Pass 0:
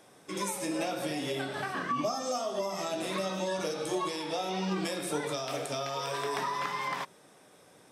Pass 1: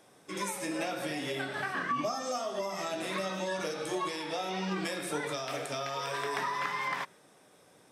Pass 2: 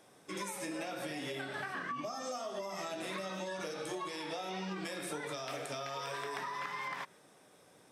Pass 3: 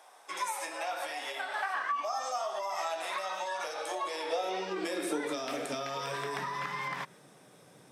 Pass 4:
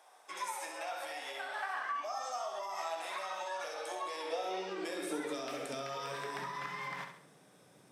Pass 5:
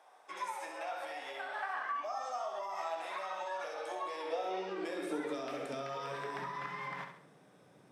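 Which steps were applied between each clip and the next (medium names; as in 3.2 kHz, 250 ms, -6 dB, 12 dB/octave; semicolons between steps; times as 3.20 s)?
dynamic bell 1.8 kHz, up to +6 dB, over -50 dBFS, Q 1.3; trim -2.5 dB
compression, threshold -35 dBFS, peak gain reduction 7.5 dB; trim -1.5 dB
high-pass sweep 820 Hz -> 130 Hz, 3.59–6.53 s; trim +3.5 dB
flutter echo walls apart 11.5 m, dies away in 0.55 s; trim -5.5 dB
treble shelf 3.9 kHz -11.5 dB; trim +1 dB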